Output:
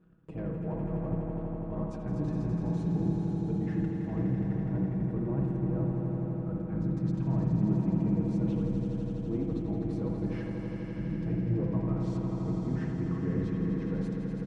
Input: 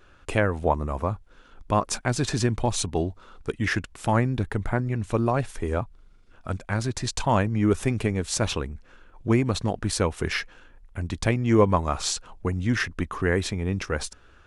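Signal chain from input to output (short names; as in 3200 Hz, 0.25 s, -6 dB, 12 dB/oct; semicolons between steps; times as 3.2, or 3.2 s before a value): octaver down 1 oct, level +3 dB; comb 6.3 ms, depth 74%; sample leveller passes 2; reverse; compressor 6:1, threshold -29 dBFS, peak gain reduction 19 dB; reverse; band-pass 200 Hz, Q 1.3; swelling echo 83 ms, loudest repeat 5, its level -8 dB; on a send at -3 dB: reverb RT60 0.65 s, pre-delay 53 ms; on the sum: gain +1 dB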